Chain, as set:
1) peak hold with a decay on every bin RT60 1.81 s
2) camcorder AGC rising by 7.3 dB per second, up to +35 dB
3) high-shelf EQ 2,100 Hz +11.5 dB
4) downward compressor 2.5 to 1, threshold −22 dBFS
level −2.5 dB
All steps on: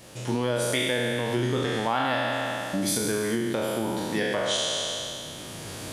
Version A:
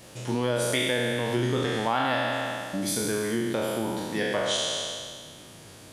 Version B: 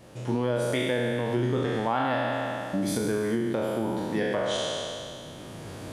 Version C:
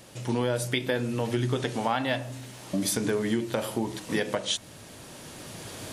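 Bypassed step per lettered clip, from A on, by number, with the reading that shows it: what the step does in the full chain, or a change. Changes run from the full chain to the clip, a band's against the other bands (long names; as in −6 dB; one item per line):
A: 2, change in momentary loudness spread +5 LU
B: 3, 8 kHz band −8.5 dB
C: 1, 125 Hz band +4.0 dB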